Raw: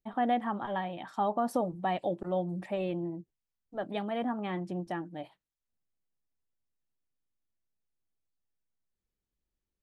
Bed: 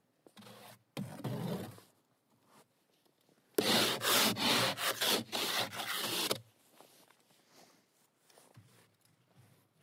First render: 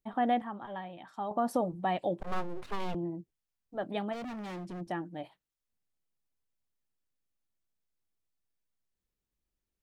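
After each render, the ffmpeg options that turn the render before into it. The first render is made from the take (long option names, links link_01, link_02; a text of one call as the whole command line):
ffmpeg -i in.wav -filter_complex "[0:a]asettb=1/sr,asplit=3[link_01][link_02][link_03];[link_01]atrim=end=2.204[link_04];[link_02]atrim=start=2.2:end=2.95,asetpts=PTS-STARTPTS,afade=type=in:duration=0.004:curve=qsin,afade=type=out:start_time=0.746:duration=0.004:curve=qsin,aeval=exprs='abs(val(0))':channel_layout=same[link_05];[link_03]atrim=start=2.946[link_06];[link_04][link_05]acrossfade=duration=0.004:curve1=hsin:curve2=qsin[link_07];[link_07][link_06]acrossfade=duration=0.004:curve1=qsin:curve2=hsin,asplit=3[link_08][link_09][link_10];[link_08]afade=type=out:start_time=4.12:duration=0.02[link_11];[link_09]asoftclip=type=hard:threshold=-38.5dB,afade=type=in:start_time=4.12:duration=0.02,afade=type=out:start_time=4.8:duration=0.02[link_12];[link_10]afade=type=in:start_time=4.8:duration=0.02[link_13];[link_11][link_12][link_13]amix=inputs=3:normalize=0,asplit=3[link_14][link_15][link_16];[link_14]atrim=end=0.422[link_17];[link_15]atrim=start=0.418:end=1.312,asetpts=PTS-STARTPTS,volume=-7dB[link_18];[link_16]atrim=start=1.308[link_19];[link_17][link_18]acrossfade=duration=0.004:curve1=hsin:curve2=hsin[link_20];[link_20][link_19]acrossfade=duration=0.004:curve1=hsin:curve2=hsin" out.wav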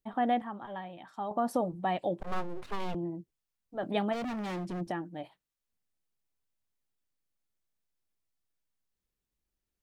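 ffmpeg -i in.wav -filter_complex "[0:a]asplit=3[link_01][link_02][link_03];[link_01]atrim=end=3.832[link_04];[link_02]atrim=start=3.828:end=4.912,asetpts=PTS-STARTPTS,volume=4.5dB[link_05];[link_03]atrim=start=4.908[link_06];[link_04][link_05]acrossfade=duration=0.004:curve1=hsin:curve2=hsin[link_07];[link_07][link_06]acrossfade=duration=0.004:curve1=hsin:curve2=hsin" out.wav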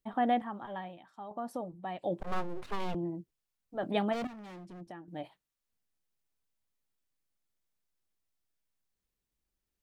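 ffmpeg -i in.wav -filter_complex "[0:a]asplit=5[link_01][link_02][link_03][link_04][link_05];[link_01]atrim=end=1.03,asetpts=PTS-STARTPTS,afade=type=out:start_time=0.88:duration=0.15:silence=0.375837[link_06];[link_02]atrim=start=1.03:end=1.98,asetpts=PTS-STARTPTS,volume=-8.5dB[link_07];[link_03]atrim=start=1.98:end=4.272,asetpts=PTS-STARTPTS,afade=type=in:duration=0.15:silence=0.375837[link_08];[link_04]atrim=start=4.268:end=5.082,asetpts=PTS-STARTPTS,volume=-11.5dB[link_09];[link_05]atrim=start=5.078[link_10];[link_06][link_07][link_08]concat=n=3:v=0:a=1[link_11];[link_11][link_09]acrossfade=duration=0.004:curve1=hsin:curve2=hsin[link_12];[link_12][link_10]acrossfade=duration=0.004:curve1=hsin:curve2=hsin" out.wav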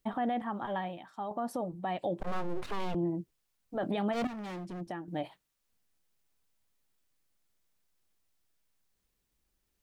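ffmpeg -i in.wav -filter_complex "[0:a]asplit=2[link_01][link_02];[link_02]acompressor=threshold=-38dB:ratio=6,volume=2dB[link_03];[link_01][link_03]amix=inputs=2:normalize=0,alimiter=limit=-24dB:level=0:latency=1:release=62" out.wav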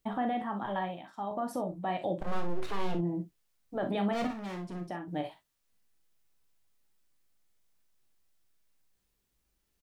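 ffmpeg -i in.wav -filter_complex "[0:a]asplit=2[link_01][link_02];[link_02]adelay=16,volume=-10.5dB[link_03];[link_01][link_03]amix=inputs=2:normalize=0,asplit=2[link_04][link_05];[link_05]aecho=0:1:40|59:0.376|0.251[link_06];[link_04][link_06]amix=inputs=2:normalize=0" out.wav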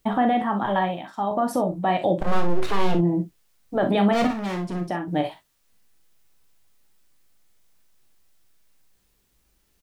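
ffmpeg -i in.wav -af "volume=11dB" out.wav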